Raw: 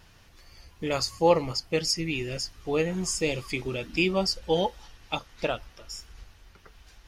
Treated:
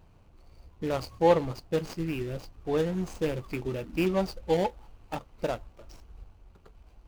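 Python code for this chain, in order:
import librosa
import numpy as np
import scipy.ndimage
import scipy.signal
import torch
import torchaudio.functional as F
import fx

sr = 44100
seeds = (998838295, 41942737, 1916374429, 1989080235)

y = scipy.signal.medfilt(x, 25)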